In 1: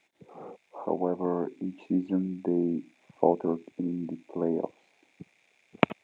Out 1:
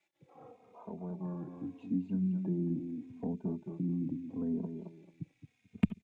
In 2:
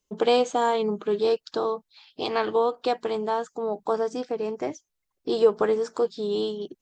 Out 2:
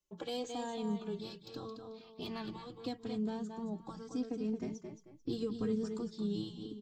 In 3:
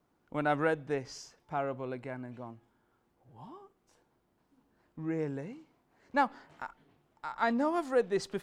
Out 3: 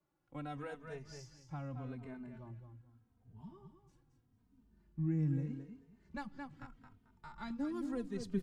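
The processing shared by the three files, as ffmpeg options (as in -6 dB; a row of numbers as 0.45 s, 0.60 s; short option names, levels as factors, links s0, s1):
-filter_complex "[0:a]aecho=1:1:220|440|660:0.355|0.0816|0.0188,acrossover=split=260|3000[s0][s1][s2];[s1]acompressor=threshold=0.0158:ratio=2.5[s3];[s0][s3][s2]amix=inputs=3:normalize=0,acrossover=split=2400[s4][s5];[s5]asoftclip=type=tanh:threshold=0.0355[s6];[s4][s6]amix=inputs=2:normalize=0,asubboost=boost=11:cutoff=180,asplit=2[s7][s8];[s8]adelay=3,afreqshift=-0.8[s9];[s7][s9]amix=inputs=2:normalize=1,volume=0.447"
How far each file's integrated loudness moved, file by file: -6.5 LU, -14.0 LU, -8.5 LU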